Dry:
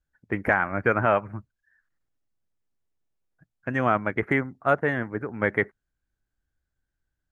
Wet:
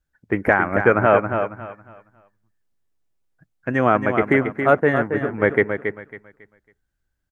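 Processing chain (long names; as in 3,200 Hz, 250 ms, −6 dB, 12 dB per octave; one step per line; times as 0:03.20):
on a send: repeating echo 275 ms, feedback 30%, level −7.5 dB
on the sum: dynamic equaliser 410 Hz, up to +5 dB, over −36 dBFS, Q 0.98
level +3.5 dB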